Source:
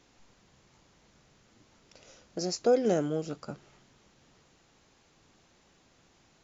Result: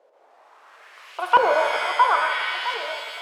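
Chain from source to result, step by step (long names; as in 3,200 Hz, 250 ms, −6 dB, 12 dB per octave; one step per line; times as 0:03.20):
spike at every zero crossing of −28 dBFS
high-pass filter 240 Hz 24 dB per octave
dynamic equaliser 760 Hz, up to +5 dB, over −39 dBFS, Q 0.87
wrong playback speed 7.5 ips tape played at 15 ips
on a send: tape delay 662 ms, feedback 50%, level −5 dB, low-pass 2,400 Hz
on the sum: auto-filter low-pass saw up 0.73 Hz 480–3,500 Hz
reverb with rising layers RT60 1.9 s, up +7 semitones, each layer −2 dB, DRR 5 dB
level +5 dB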